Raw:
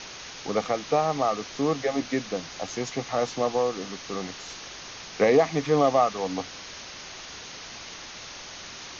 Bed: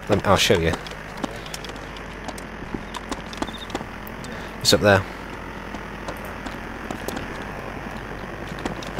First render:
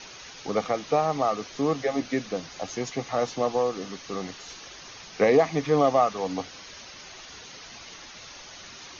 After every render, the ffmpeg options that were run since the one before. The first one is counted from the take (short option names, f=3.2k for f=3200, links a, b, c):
-af "afftdn=nr=7:nf=-42"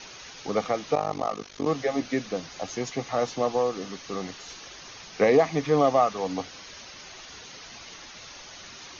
-filter_complex "[0:a]asettb=1/sr,asplit=3[a][b][c];[a]atrim=end=0.954[d];[b]atrim=start=0.95:end=1.67,asetpts=PTS-STARTPTS,afade=t=in:d=0.004:c=qsin,afade=t=out:st=0.716:d=0.004:c=qsin,tremolo=f=49:d=0.974[e];[c]atrim=start=1.666[f];[d][e]acrossfade=d=0.004:c1=hsin:c2=qsin[g];[g][f]acrossfade=d=0.004:c1=qsin:c2=hsin"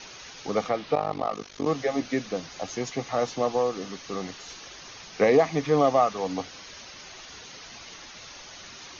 -filter_complex "[0:a]asettb=1/sr,asplit=3[a][b][c];[a]atrim=end=0.694[d];[b]atrim=start=0.69:end=1.33,asetpts=PTS-STARTPTS,afade=t=in:d=0.004:c=qsin,afade=t=out:st=0.636:d=0.004:c=qsin,lowpass=f=4.8k:w=0.5412,lowpass=f=4.8k:w=1.3066[e];[c]atrim=start=1.326[f];[d][e]acrossfade=d=0.004:c1=hsin:c2=qsin[g];[g][f]acrossfade=d=0.004:c1=qsin:c2=hsin"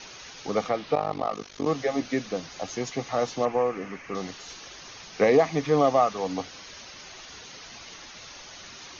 -filter_complex "[0:a]asettb=1/sr,asplit=3[a][b][c];[a]atrim=end=3.454[d];[b]atrim=start=3.45:end=4.15,asetpts=PTS-STARTPTS,afade=t=in:d=0.004:c=qsin,afade=t=out:st=0.696:d=0.004:c=qsin,highshelf=f=2.9k:t=q:w=3:g=-8.5[e];[c]atrim=start=4.146[f];[d][e]acrossfade=d=0.004:c1=hsin:c2=qsin[g];[g][f]acrossfade=d=0.004:c1=qsin:c2=hsin"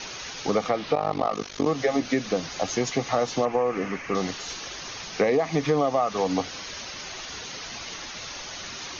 -filter_complex "[0:a]asplit=2[a][b];[b]alimiter=limit=-18dB:level=0:latency=1:release=138,volume=2dB[c];[a][c]amix=inputs=2:normalize=0,acompressor=threshold=-19dB:ratio=5"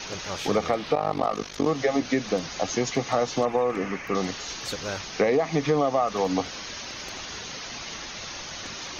-filter_complex "[1:a]volume=-17.5dB[a];[0:a][a]amix=inputs=2:normalize=0"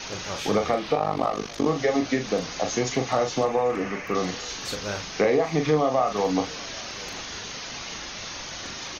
-filter_complex "[0:a]asplit=2[a][b];[b]adelay=39,volume=-6.5dB[c];[a][c]amix=inputs=2:normalize=0,aecho=1:1:790:0.0708"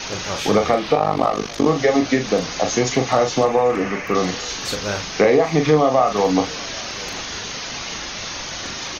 -af "volume=6.5dB"